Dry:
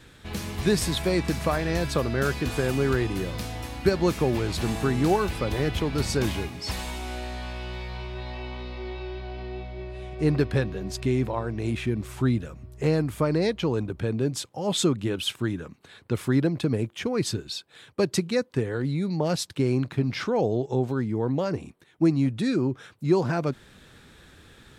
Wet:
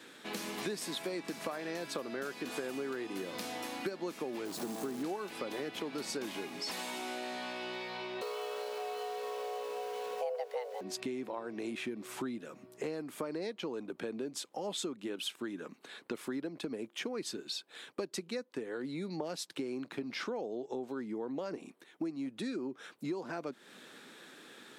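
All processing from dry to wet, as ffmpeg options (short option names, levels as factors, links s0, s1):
-filter_complex "[0:a]asettb=1/sr,asplit=3[s0][s1][s2];[s0]atrim=end=4.454[s3];[s1]atrim=start=4.45:end=5.03,asetpts=PTS-STARTPTS,afade=t=in:d=0.004:c=qsin,afade=t=out:st=0.576:d=0.004:c=qsin,aeval=exprs='val(0)+0.5*0.0178*sgn(val(0))':c=same,equalizer=f=2600:w=0.78:g=-14,acrusher=bits=7:dc=4:mix=0:aa=0.000001[s4];[s2]atrim=start=5.026[s5];[s3][s4]acrossfade=d=0.004:c1=hsin:c2=qsin[s6];[s6][s5]acrossfade=d=0.004:c1=qsin:c2=hsin,asettb=1/sr,asplit=3[s7][s8][s9];[s7]atrim=end=8.214[s10];[s8]atrim=start=8.21:end=10.81,asetpts=PTS-STARTPTS,afade=t=in:d=0.004:c=qsin,afade=t=out:st=2.596:d=0.004:c=qsin,afreqshift=360,aeval=exprs='val(0)*gte(abs(val(0)),0.00944)':c=same,equalizer=f=520:w=7.1:g=8[s11];[s9]atrim=start=10.806[s12];[s10][s11]acrossfade=d=0.004:c1=hsin:c2=qsin[s13];[s13][s12]acrossfade=d=0.004:c1=qsin:c2=hsin,highpass=f=230:w=0.5412,highpass=f=230:w=1.3066,acompressor=threshold=0.0158:ratio=6"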